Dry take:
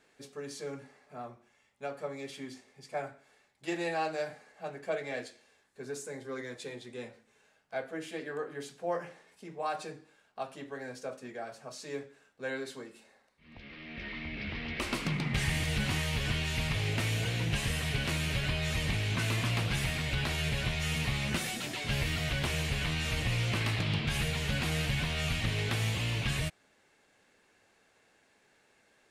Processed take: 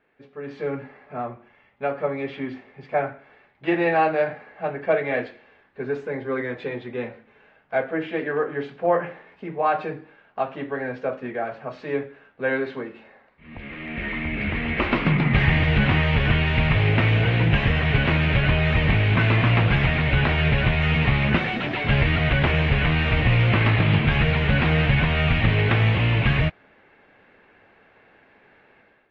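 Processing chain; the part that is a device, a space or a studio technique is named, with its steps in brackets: action camera in a waterproof case (LPF 2600 Hz 24 dB/oct; AGC gain up to 13 dB; AAC 48 kbps 48000 Hz)

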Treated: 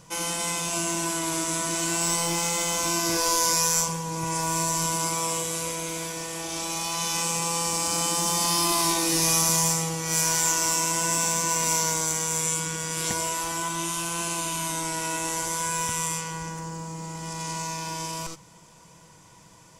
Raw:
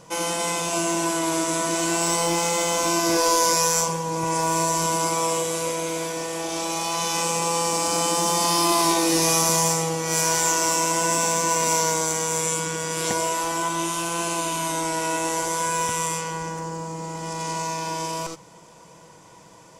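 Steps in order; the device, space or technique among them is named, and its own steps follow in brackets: smiley-face EQ (low shelf 120 Hz +6.5 dB; bell 510 Hz -7 dB 1.9 oct; high shelf 9600 Hz +4.5 dB); gain -2 dB

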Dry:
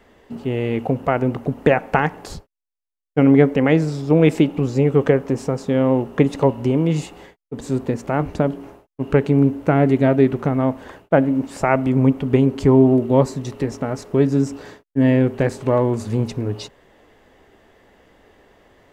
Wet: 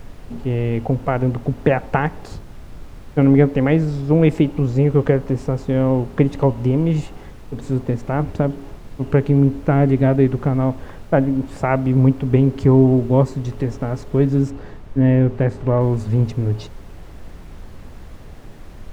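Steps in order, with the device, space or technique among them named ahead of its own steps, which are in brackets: car interior (bell 110 Hz +8 dB 0.92 oct; high shelf 4200 Hz -8 dB; brown noise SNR 16 dB); 14.5–15.81 high shelf 4400 Hz -9.5 dB; gain -1.5 dB

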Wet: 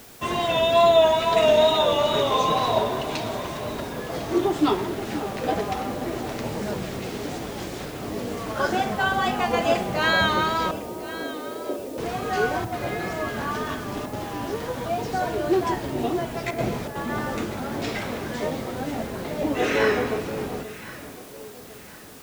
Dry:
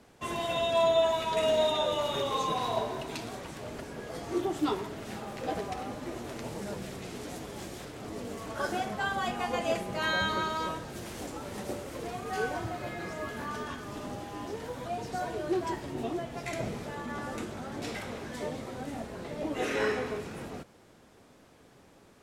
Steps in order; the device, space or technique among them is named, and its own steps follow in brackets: 10.71–11.98 elliptic band-pass 260–680 Hz; worn cassette (LPF 6400 Hz 12 dB/oct; wow and flutter; level dips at 12.65/14.06/16.51/16.88, 71 ms -6 dB; white noise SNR 23 dB); echo with dull and thin repeats by turns 0.526 s, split 870 Hz, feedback 60%, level -11 dB; gain +8.5 dB

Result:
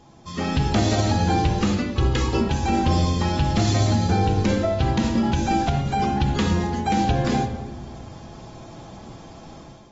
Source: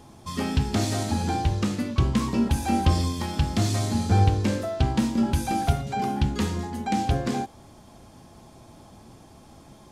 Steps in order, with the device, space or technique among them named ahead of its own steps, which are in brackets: 1.93–2.41 comb 2.4 ms, depth 97%; shoebox room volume 1500 m³, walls mixed, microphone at 0.7 m; low-bitrate web radio (AGC gain up to 10 dB; limiter -8.5 dBFS, peak gain reduction 7 dB; gain -3 dB; AAC 24 kbps 44100 Hz)

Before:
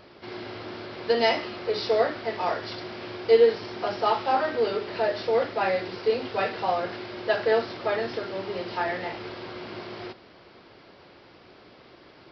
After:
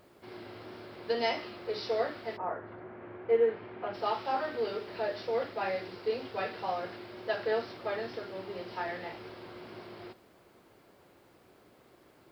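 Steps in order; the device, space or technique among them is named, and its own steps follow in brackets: plain cassette with noise reduction switched in (mismatched tape noise reduction decoder only; wow and flutter 26 cents; white noise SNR 39 dB); 2.36–3.93 LPF 1500 Hz -> 2800 Hz 24 dB/oct; gain -8 dB

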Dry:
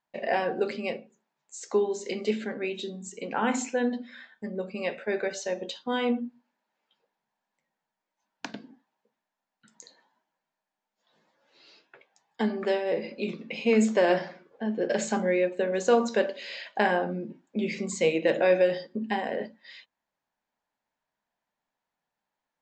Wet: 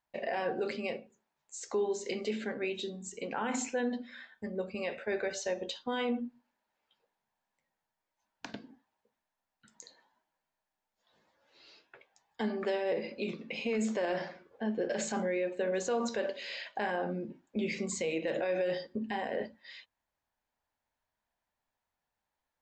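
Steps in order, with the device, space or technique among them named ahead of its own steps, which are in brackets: car stereo with a boomy subwoofer (resonant low shelf 120 Hz +9 dB, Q 1.5; limiter -22 dBFS, peak gain reduction 10 dB); gain -2 dB

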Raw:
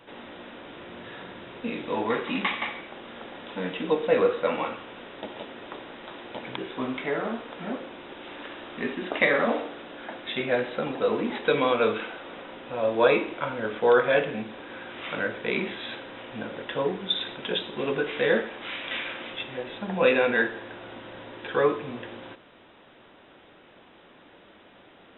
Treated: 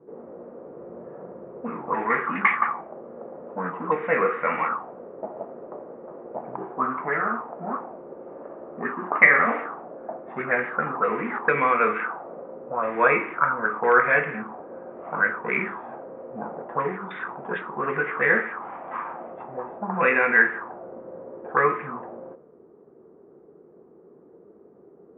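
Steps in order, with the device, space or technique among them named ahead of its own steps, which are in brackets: envelope filter bass rig (envelope low-pass 390–2100 Hz up, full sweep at -23.5 dBFS; speaker cabinet 88–2200 Hz, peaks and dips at 110 Hz -10 dB, 150 Hz +5 dB, 290 Hz -6 dB, 560 Hz -6 dB, 1200 Hz +8 dB)

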